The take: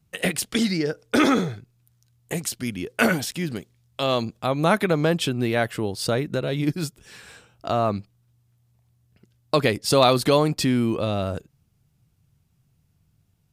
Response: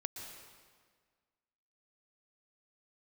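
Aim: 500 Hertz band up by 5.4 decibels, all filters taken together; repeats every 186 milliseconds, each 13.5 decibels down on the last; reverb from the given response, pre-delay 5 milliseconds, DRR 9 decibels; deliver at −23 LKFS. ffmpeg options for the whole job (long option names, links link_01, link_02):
-filter_complex "[0:a]equalizer=frequency=500:width_type=o:gain=6.5,aecho=1:1:186|372:0.211|0.0444,asplit=2[link_01][link_02];[1:a]atrim=start_sample=2205,adelay=5[link_03];[link_02][link_03]afir=irnorm=-1:irlink=0,volume=-8dB[link_04];[link_01][link_04]amix=inputs=2:normalize=0,volume=-3dB"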